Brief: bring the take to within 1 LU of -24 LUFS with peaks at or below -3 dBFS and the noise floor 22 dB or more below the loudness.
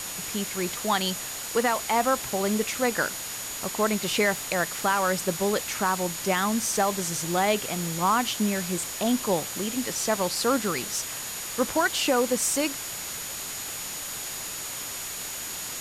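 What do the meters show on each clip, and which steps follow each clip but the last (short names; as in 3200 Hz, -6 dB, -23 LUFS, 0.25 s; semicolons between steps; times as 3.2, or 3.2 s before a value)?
steady tone 6800 Hz; tone level -38 dBFS; noise floor -35 dBFS; noise floor target -49 dBFS; loudness -26.5 LUFS; peak -11.5 dBFS; loudness target -24.0 LUFS
-> notch 6800 Hz, Q 30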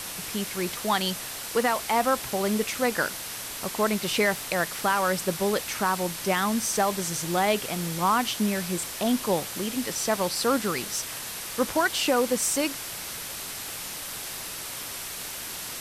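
steady tone none; noise floor -36 dBFS; noise floor target -49 dBFS
-> denoiser 13 dB, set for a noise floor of -36 dBFS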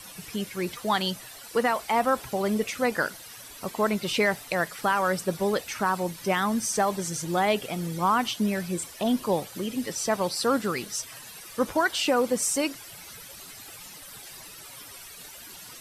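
noise floor -45 dBFS; noise floor target -49 dBFS
-> denoiser 6 dB, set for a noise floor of -45 dBFS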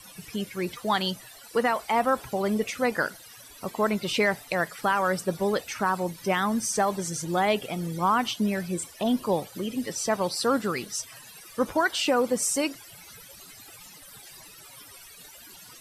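noise floor -48 dBFS; noise floor target -49 dBFS
-> denoiser 6 dB, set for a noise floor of -48 dBFS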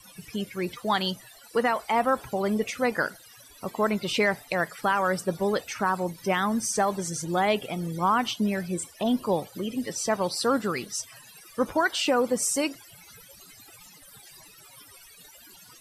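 noise floor -51 dBFS; loudness -27.0 LUFS; peak -13.0 dBFS; loudness target -24.0 LUFS
-> gain +3 dB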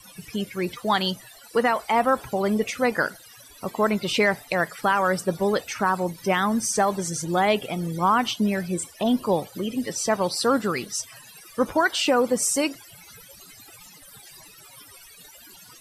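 loudness -24.0 LUFS; peak -10.0 dBFS; noise floor -48 dBFS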